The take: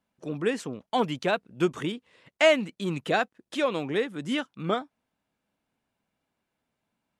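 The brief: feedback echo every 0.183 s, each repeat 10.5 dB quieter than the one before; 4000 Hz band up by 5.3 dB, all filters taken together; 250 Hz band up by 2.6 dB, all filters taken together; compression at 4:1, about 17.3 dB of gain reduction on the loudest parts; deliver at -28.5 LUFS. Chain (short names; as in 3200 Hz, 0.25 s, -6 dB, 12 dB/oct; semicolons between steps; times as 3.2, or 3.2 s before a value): bell 250 Hz +3.5 dB; bell 4000 Hz +7.5 dB; compressor 4:1, threshold -35 dBFS; feedback echo 0.183 s, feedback 30%, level -10.5 dB; gain +9 dB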